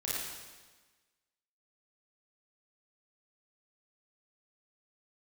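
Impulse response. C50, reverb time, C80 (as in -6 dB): -3.5 dB, 1.3 s, -0.5 dB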